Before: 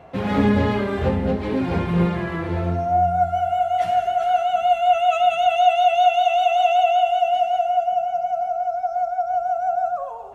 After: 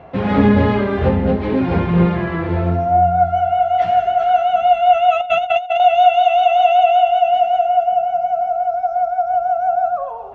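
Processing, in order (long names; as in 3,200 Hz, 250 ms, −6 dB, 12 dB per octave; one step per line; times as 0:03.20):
0:05.21–0:05.80: compressor whose output falls as the input rises −22 dBFS, ratio −0.5
high-frequency loss of the air 180 metres
level +5.5 dB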